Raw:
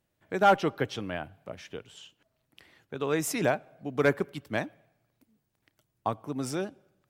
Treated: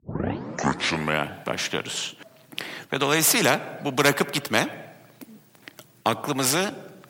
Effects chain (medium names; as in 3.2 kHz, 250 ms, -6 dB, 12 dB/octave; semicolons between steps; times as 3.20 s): tape start-up on the opening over 1.29 s; high-pass 140 Hz 24 dB/octave; spectrum-flattening compressor 2:1; trim +8 dB